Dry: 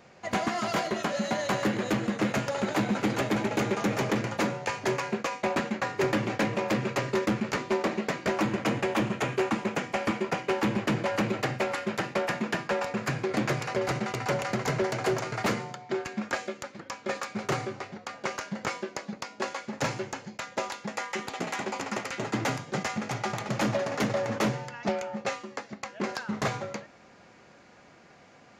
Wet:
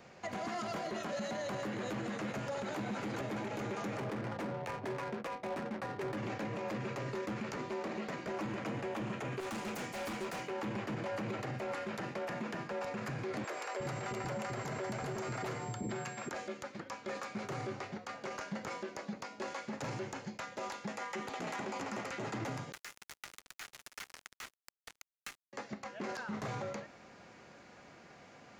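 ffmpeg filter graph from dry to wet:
-filter_complex "[0:a]asettb=1/sr,asplit=3[a][b][c];[a]atrim=end=3.974[d];[b]atrim=start=3.97:end=6.17,asetpts=PTS-STARTPTS,afade=t=in:d=0.004:c=qsin,afade=t=out:st=2.196:d=0.004:c=qsin,highpass=46,adynamicsmooth=sensitivity=6:basefreq=560[e];[c]atrim=start=6.166[f];[d][e]acrossfade=d=0.004:c1=hsin:c2=qsin[g];[g][f]acrossfade=d=0.004:c1=qsin:c2=hsin,asettb=1/sr,asplit=3[h][i][j];[h]atrim=end=9.404[k];[i]atrim=start=9.4:end=10.48,asetpts=PTS-STARTPTS,afade=t=in:d=0.004:c=qsin,afade=t=out:st=1.076:d=0.004:c=qsin,aemphasis=mode=production:type=50fm,asoftclip=type=hard:threshold=-34.5dB[l];[j]atrim=start=10.476[m];[k][l]acrossfade=d=0.004:c1=hsin:c2=qsin[n];[n][m]acrossfade=d=0.004:c1=qsin:c2=hsin,asettb=1/sr,asplit=3[o][p][q];[o]atrim=end=13.444[r];[p]atrim=start=13.44:end=16.29,asetpts=PTS-STARTPTS,afade=t=in:d=0.004:c=qsin,afade=t=out:st=2.846:d=0.004:c=qsin,aeval=exprs='val(0)+0.00355*sin(2*PI*7500*n/s)':c=same,acrossover=split=380[s][t];[s]adelay=360[u];[u][t]amix=inputs=2:normalize=0,atrim=end_sample=125685[v];[q]atrim=start=16.286[w];[r][v]acrossfade=d=0.004:c1=hsin:c2=qsin[x];[x][w]acrossfade=d=0.004:c1=qsin:c2=hsin,asettb=1/sr,asplit=3[y][z][aa];[y]atrim=end=22.724[ab];[z]atrim=start=22.72:end=25.53,asetpts=PTS-STARTPTS,afade=t=in:d=0.004:c=qsin,afade=t=out:st=2.806:d=0.004:c=qsin,highpass=f=1.4k:w=0.5412,highpass=f=1.4k:w=1.3066,acrusher=bits=4:mix=0:aa=0.5,acompressor=threshold=-38dB:ratio=3:attack=3.2:release=140:knee=1:detection=peak[ac];[aa]atrim=start=25.526[ad];[ab][ac]acrossfade=d=0.004:c1=hsin:c2=qsin[ae];[ae][ad]acrossfade=d=0.004:c1=qsin:c2=hsin,acrossover=split=620|1600[af][ag][ah];[af]acompressor=threshold=-30dB:ratio=4[ai];[ag]acompressor=threshold=-36dB:ratio=4[aj];[ah]acompressor=threshold=-42dB:ratio=4[ak];[ai][aj][ak]amix=inputs=3:normalize=0,alimiter=level_in=5.5dB:limit=-24dB:level=0:latency=1:release=28,volume=-5.5dB,volume=-1.5dB"

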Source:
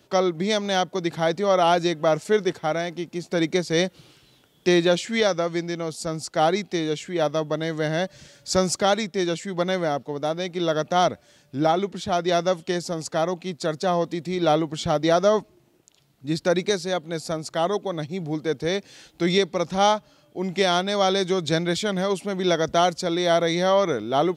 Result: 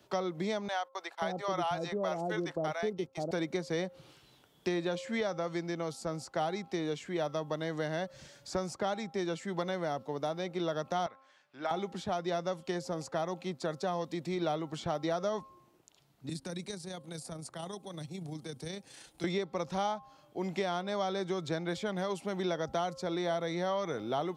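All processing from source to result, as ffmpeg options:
-filter_complex "[0:a]asettb=1/sr,asplit=3[a][b][c];[a]atrim=end=0.684[d];[b]atrim=start=0.68:end=3.31,asetpts=PTS-STARTPTS,afade=t=in:d=0.004:c=qsin,afade=t=out:st=2.626:d=0.004:c=qsin,agate=range=-24dB:threshold=-35dB:ratio=16:release=100:detection=peak,acrossover=split=590[e][f];[e]adelay=530[g];[g][f]amix=inputs=2:normalize=0,atrim=end_sample=115983[h];[c]atrim=start=3.306[i];[d][h]acrossfade=d=0.004:c1=hsin:c2=qsin[j];[j][i]acrossfade=d=0.004:c1=qsin:c2=hsin,asettb=1/sr,asplit=3[k][l][m];[k]atrim=end=11.064[n];[l]atrim=start=11.06:end=11.71,asetpts=PTS-STARTPTS,afade=t=in:d=0.004:c=qsin,afade=t=out:st=0.646:d=0.004:c=qsin,bandpass=f=1.8k:t=q:w=0.99,asoftclip=type=hard:threshold=-16dB[o];[m]atrim=start=11.706[p];[n][o]acrossfade=d=0.004:c1=hsin:c2=qsin[q];[q][p]acrossfade=d=0.004:c1=qsin:c2=hsin,asettb=1/sr,asplit=3[r][s][t];[r]atrim=end=16.294[u];[s]atrim=start=16.29:end=19.24,asetpts=PTS-STARTPTS,afade=t=in:d=0.004:c=qsin,afade=t=out:st=2.946:d=0.004:c=qsin,equalizer=f=9.3k:t=o:w=0.44:g=14.5,acrossover=split=190|3000[v][w][x];[w]acompressor=threshold=-41dB:ratio=3:attack=3.2:release=140:knee=2.83:detection=peak[y];[v][y][x]amix=inputs=3:normalize=0,tremolo=f=29:d=0.4[z];[t]atrim=start=19.236[aa];[u][z]acrossfade=d=0.004:c1=hsin:c2=qsin[ab];[ab][aa]acrossfade=d=0.004:c1=qsin:c2=hsin,equalizer=f=920:w=1.2:g=5,bandreject=f=266.9:t=h:w=4,bandreject=f=533.8:t=h:w=4,bandreject=f=800.7:t=h:w=4,bandreject=f=1.0676k:t=h:w=4,bandreject=f=1.3345k:t=h:w=4,acrossover=split=160|2200[ac][ad][ae];[ac]acompressor=threshold=-40dB:ratio=4[af];[ad]acompressor=threshold=-26dB:ratio=4[ag];[ae]acompressor=threshold=-41dB:ratio=4[ah];[af][ag][ah]amix=inputs=3:normalize=0,volume=-6dB"

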